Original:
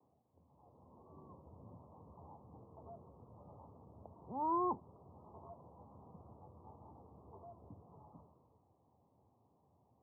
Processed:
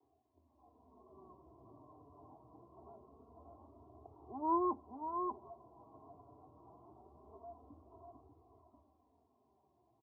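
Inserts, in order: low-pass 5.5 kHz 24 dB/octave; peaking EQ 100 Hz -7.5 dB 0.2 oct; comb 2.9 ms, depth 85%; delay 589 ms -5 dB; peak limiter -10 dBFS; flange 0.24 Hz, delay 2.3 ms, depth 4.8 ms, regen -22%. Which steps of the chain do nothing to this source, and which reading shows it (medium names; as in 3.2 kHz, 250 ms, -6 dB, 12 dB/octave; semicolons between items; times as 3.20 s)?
low-pass 5.5 kHz: input has nothing above 1.3 kHz; peak limiter -10 dBFS: peak at its input -21.0 dBFS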